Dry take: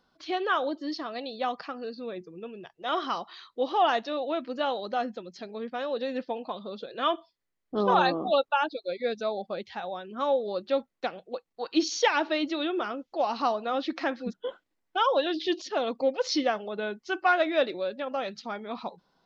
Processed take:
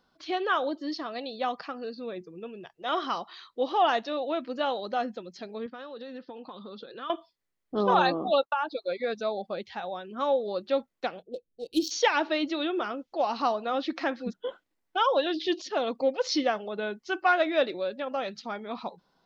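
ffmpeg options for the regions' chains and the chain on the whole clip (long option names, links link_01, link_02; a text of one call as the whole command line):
ffmpeg -i in.wav -filter_complex "[0:a]asettb=1/sr,asplit=3[link_01][link_02][link_03];[link_01]atrim=end=5.664[link_04];[link_02]atrim=start=5.66:end=7.1,asetpts=PTS-STARTPTS,afade=type=in:duration=0.004:curve=qsin,afade=type=out:start_time=1.436:duration=0.004:curve=qsin,acompressor=threshold=-37dB:ratio=4:attack=3.2:release=140:knee=1:detection=peak,highpass=120,equalizer=frequency=650:width_type=q:width=4:gain=-9,equalizer=frequency=1300:width_type=q:width=4:gain=4,equalizer=frequency=2300:width_type=q:width=4:gain=-6,lowpass=frequency=5600:width=0.5412,lowpass=frequency=5600:width=1.3066[link_05];[link_03]atrim=start=7.096[link_06];[link_04][link_05]acrossfade=duration=0.004:curve1=hsin:curve2=qsin[link_07];[link_07][link_06]acrossfade=duration=0.004:curve1=qsin:curve2=hsin,asettb=1/sr,asplit=3[link_08][link_09][link_10];[link_08]atrim=end=8.424[link_11];[link_09]atrim=start=8.42:end=9.19,asetpts=PTS-STARTPTS,afade=type=in:duration=0.004:curve=qsin,afade=type=out:start_time=0.766:duration=0.004:curve=qsin,agate=range=-33dB:threshold=-51dB:ratio=3:release=100:detection=peak,equalizer=frequency=1100:width=1.3:gain=11.5,acompressor=threshold=-24dB:ratio=6:attack=3.2:release=140:knee=1:detection=peak[link_12];[link_10]atrim=start=9.186[link_13];[link_11][link_12]acrossfade=duration=0.004:curve1=hsin:curve2=qsin[link_14];[link_14][link_13]acrossfade=duration=0.004:curve1=qsin:curve2=hsin,asettb=1/sr,asplit=3[link_15][link_16][link_17];[link_15]atrim=end=11.224[link_18];[link_16]atrim=start=11.22:end=11.91,asetpts=PTS-STARTPTS,afade=type=in:duration=0.004:curve=qsin,afade=type=out:start_time=0.686:duration=0.004:curve=qsin,asubboost=boost=9.5:cutoff=150,adynamicsmooth=sensitivity=7.5:basefreq=1700,asuperstop=centerf=1300:order=8:qfactor=0.52[link_19];[link_17]atrim=start=11.906[link_20];[link_18][link_19]acrossfade=duration=0.004:curve1=hsin:curve2=qsin[link_21];[link_21][link_20]acrossfade=duration=0.004:curve1=qsin:curve2=hsin" out.wav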